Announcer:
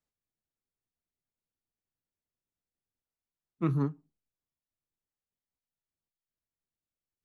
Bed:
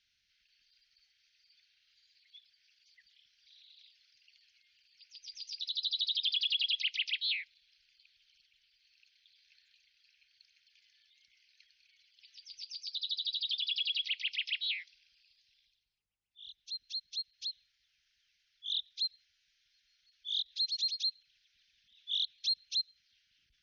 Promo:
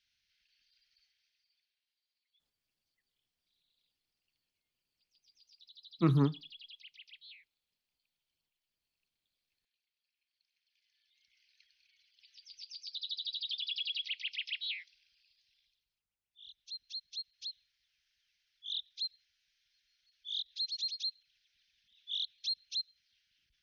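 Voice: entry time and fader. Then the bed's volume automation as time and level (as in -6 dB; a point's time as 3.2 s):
2.40 s, +1.5 dB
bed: 1.02 s -3.5 dB
1.97 s -21 dB
10.16 s -21 dB
11.4 s -3.5 dB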